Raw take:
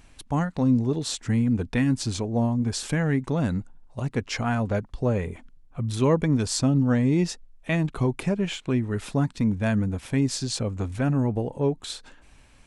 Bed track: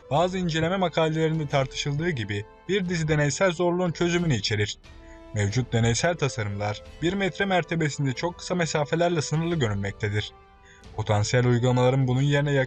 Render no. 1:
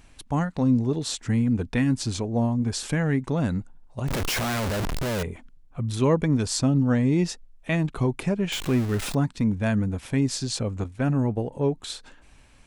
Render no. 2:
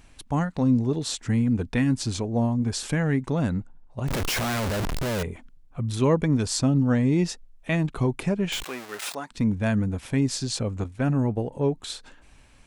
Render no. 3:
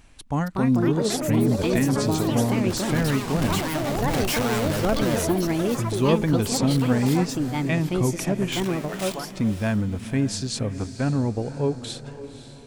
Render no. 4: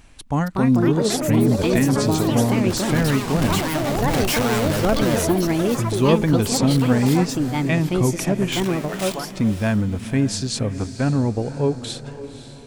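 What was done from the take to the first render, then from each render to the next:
4.08–5.23 s: one-bit comparator; 8.52–9.15 s: jump at every zero crossing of -28.5 dBFS; 10.84–11.52 s: expander -27 dBFS
3.49–4.02 s: treble shelf 4.3 kHz -9.5 dB; 8.63–9.31 s: high-pass 660 Hz
echo that smears into a reverb 537 ms, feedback 45%, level -13 dB; ever faster or slower copies 322 ms, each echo +5 st, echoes 3
trim +3.5 dB

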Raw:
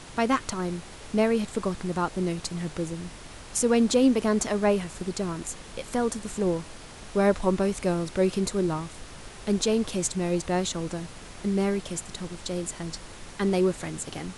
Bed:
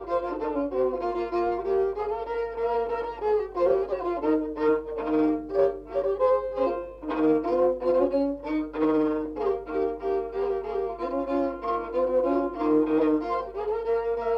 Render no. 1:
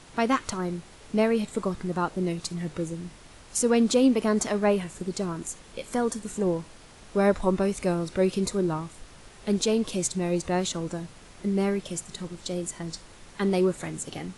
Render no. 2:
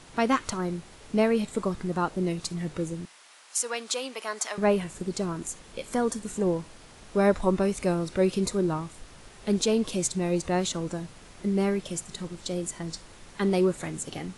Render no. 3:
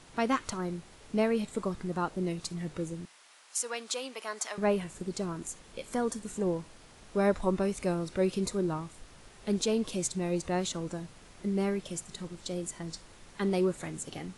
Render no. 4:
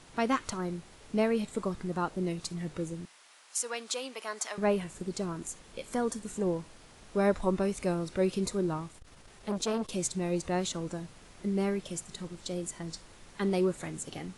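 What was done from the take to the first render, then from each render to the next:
noise print and reduce 6 dB
3.05–4.58 s: high-pass 930 Hz
trim -4.5 dB
8.86–9.89 s: transformer saturation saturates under 630 Hz

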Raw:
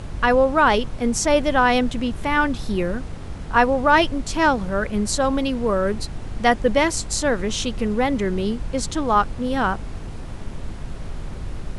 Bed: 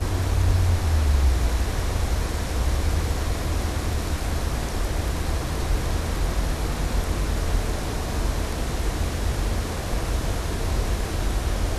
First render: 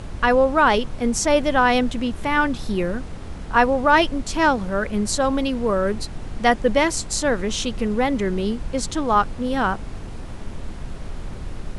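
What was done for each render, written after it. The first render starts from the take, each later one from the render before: de-hum 50 Hz, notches 3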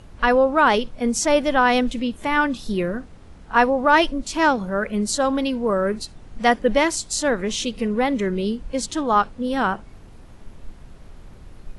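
noise print and reduce 11 dB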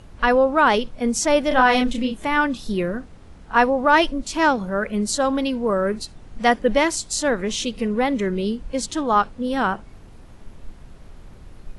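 1.48–2.25 s: doubling 31 ms -4 dB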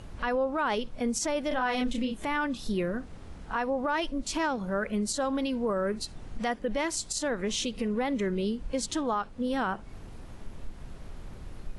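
compression 2:1, threshold -31 dBFS, peak gain reduction 11.5 dB; peak limiter -20 dBFS, peak gain reduction 8 dB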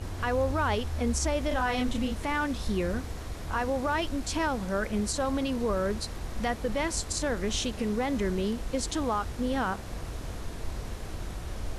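add bed -13 dB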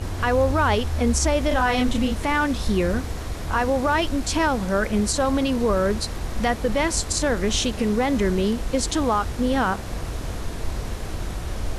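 trim +7.5 dB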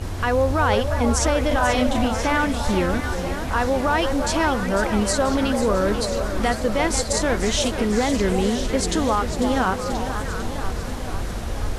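repeats whose band climbs or falls 343 ms, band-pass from 640 Hz, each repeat 1.4 oct, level -4.5 dB; modulated delay 492 ms, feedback 67%, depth 198 cents, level -10 dB

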